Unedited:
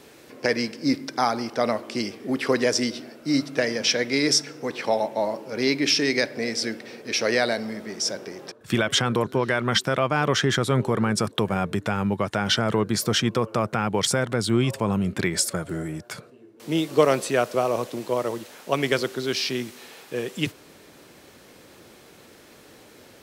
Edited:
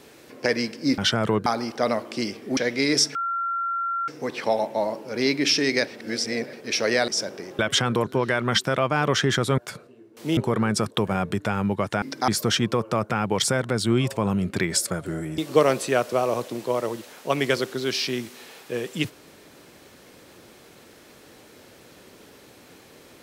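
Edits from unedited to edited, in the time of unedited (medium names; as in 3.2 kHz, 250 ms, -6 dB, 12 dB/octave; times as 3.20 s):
0.98–1.24 s: swap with 12.43–12.91 s
2.35–3.91 s: delete
4.49 s: add tone 1.37 kHz -23.5 dBFS 0.93 s
6.28–6.94 s: reverse
7.49–7.96 s: delete
8.47–8.79 s: delete
16.01–16.80 s: move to 10.78 s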